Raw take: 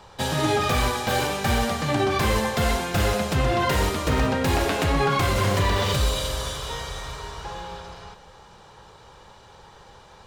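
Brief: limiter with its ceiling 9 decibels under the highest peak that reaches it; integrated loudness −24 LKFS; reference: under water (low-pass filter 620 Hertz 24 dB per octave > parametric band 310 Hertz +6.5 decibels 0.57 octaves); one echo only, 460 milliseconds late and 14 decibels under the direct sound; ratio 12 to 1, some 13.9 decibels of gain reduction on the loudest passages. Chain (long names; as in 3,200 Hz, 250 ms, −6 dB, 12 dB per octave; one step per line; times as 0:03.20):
downward compressor 12 to 1, threshold −32 dBFS
brickwall limiter −30 dBFS
low-pass filter 620 Hz 24 dB per octave
parametric band 310 Hz +6.5 dB 0.57 octaves
single-tap delay 460 ms −14 dB
level +16.5 dB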